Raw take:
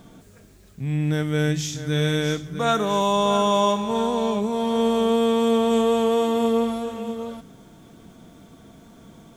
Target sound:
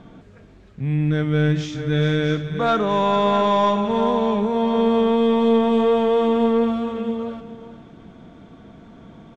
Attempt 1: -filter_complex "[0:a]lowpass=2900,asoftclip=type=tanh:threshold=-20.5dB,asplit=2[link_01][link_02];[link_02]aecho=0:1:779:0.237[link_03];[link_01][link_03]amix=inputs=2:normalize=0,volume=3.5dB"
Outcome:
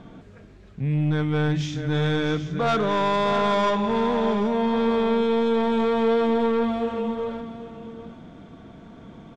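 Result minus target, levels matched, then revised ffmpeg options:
echo 356 ms late; soft clipping: distortion +9 dB
-filter_complex "[0:a]lowpass=2900,asoftclip=type=tanh:threshold=-12.5dB,asplit=2[link_01][link_02];[link_02]aecho=0:1:423:0.237[link_03];[link_01][link_03]amix=inputs=2:normalize=0,volume=3.5dB"

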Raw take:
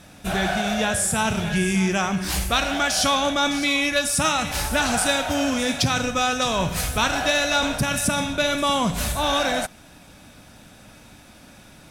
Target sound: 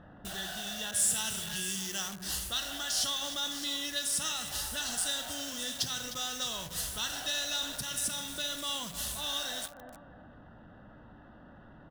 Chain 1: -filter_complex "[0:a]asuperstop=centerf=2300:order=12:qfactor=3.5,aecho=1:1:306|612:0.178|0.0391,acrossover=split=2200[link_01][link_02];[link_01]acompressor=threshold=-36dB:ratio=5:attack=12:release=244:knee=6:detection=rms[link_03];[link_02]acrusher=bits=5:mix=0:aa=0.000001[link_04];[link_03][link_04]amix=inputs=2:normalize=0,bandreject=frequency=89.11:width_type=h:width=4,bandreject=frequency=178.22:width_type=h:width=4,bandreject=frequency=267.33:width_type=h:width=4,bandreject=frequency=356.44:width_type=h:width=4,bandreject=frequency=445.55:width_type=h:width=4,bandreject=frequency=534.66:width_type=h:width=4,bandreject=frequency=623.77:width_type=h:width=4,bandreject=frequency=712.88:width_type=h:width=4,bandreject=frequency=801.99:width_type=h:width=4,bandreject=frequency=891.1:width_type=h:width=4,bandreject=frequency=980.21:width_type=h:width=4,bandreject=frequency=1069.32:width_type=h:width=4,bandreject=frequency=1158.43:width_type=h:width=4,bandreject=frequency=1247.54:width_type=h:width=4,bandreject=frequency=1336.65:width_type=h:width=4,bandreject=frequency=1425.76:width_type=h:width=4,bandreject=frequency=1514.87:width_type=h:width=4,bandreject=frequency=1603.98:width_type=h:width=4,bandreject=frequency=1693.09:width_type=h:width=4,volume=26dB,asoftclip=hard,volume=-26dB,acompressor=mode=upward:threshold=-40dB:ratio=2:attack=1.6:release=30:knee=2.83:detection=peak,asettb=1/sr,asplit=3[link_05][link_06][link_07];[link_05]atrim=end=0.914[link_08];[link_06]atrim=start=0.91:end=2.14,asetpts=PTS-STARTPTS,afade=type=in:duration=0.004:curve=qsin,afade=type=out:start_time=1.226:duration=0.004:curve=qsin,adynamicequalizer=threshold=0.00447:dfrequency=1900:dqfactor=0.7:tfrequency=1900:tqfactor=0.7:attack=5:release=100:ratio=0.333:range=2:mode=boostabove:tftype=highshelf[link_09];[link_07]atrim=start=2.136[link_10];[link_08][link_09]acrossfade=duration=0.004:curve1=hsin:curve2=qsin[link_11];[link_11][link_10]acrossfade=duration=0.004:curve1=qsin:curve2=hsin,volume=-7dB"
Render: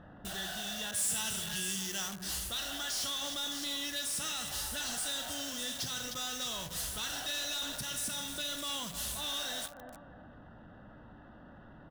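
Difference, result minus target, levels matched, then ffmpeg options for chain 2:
gain into a clipping stage and back: distortion +15 dB
-filter_complex "[0:a]asuperstop=centerf=2300:order=12:qfactor=3.5,aecho=1:1:306|612:0.178|0.0391,acrossover=split=2200[link_01][link_02];[link_01]acompressor=threshold=-36dB:ratio=5:attack=12:release=244:knee=6:detection=rms[link_03];[link_02]acrusher=bits=5:mix=0:aa=0.000001[link_04];[link_03][link_04]amix=inputs=2:normalize=0,bandreject=frequency=89.11:width_type=h:width=4,bandreject=frequency=178.22:width_type=h:width=4,bandreject=frequency=267.33:width_type=h:width=4,bandreject=frequency=356.44:width_type=h:width=4,bandreject=frequency=445.55:width_type=h:width=4,bandreject=frequency=534.66:width_type=h:width=4,bandreject=frequency=623.77:width_type=h:width=4,bandreject=frequency=712.88:width_type=h:width=4,bandreject=frequency=801.99:width_type=h:width=4,bandreject=frequency=891.1:width_type=h:width=4,bandreject=frequency=980.21:width_type=h:width=4,bandreject=frequency=1069.32:width_type=h:width=4,bandreject=frequency=1158.43:width_type=h:width=4,bandreject=frequency=1247.54:width_type=h:width=4,bandreject=frequency=1336.65:width_type=h:width=4,bandreject=frequency=1425.76:width_type=h:width=4,bandreject=frequency=1514.87:width_type=h:width=4,bandreject=frequency=1603.98:width_type=h:width=4,bandreject=frequency=1693.09:width_type=h:width=4,volume=16.5dB,asoftclip=hard,volume=-16.5dB,acompressor=mode=upward:threshold=-40dB:ratio=2:attack=1.6:release=30:knee=2.83:detection=peak,asettb=1/sr,asplit=3[link_05][link_06][link_07];[link_05]atrim=end=0.914[link_08];[link_06]atrim=start=0.91:end=2.14,asetpts=PTS-STARTPTS,afade=type=in:duration=0.004:curve=qsin,afade=type=out:start_time=1.226:duration=0.004:curve=qsin,adynamicequalizer=threshold=0.00447:dfrequency=1900:dqfactor=0.7:tfrequency=1900:tqfactor=0.7:attack=5:release=100:ratio=0.333:range=2:mode=boostabove:tftype=highshelf[link_09];[link_07]atrim=start=2.136[link_10];[link_08][link_09]acrossfade=duration=0.004:curve1=hsin:curve2=qsin[link_11];[link_11][link_10]acrossfade=duration=0.004:curve1=qsin:curve2=hsin,volume=-7dB"

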